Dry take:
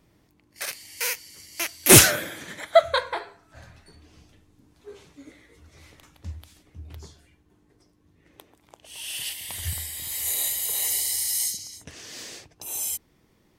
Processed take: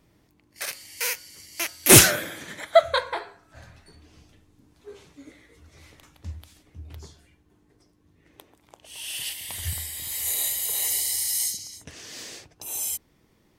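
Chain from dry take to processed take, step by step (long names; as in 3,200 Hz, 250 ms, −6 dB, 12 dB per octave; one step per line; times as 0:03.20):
hum removal 182.4 Hz, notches 9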